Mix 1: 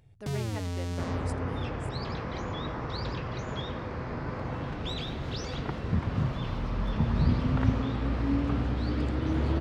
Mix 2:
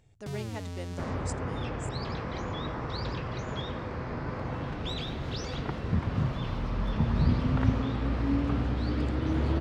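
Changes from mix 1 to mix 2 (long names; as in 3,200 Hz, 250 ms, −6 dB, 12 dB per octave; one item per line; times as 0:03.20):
speech: add low-pass with resonance 7,300 Hz, resonance Q 3.8
first sound −5.0 dB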